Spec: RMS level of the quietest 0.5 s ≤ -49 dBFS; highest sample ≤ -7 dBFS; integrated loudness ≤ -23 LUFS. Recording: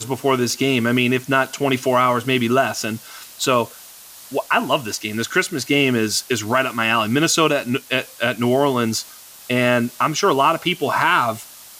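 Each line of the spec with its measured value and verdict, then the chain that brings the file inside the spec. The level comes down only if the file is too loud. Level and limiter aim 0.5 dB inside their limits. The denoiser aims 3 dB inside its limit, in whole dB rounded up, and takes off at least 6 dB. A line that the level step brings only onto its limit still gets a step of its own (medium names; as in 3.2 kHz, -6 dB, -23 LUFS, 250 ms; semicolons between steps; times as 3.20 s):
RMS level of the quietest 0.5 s -41 dBFS: fail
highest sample -4.0 dBFS: fail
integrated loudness -19.0 LUFS: fail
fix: noise reduction 7 dB, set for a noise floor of -41 dBFS; trim -4.5 dB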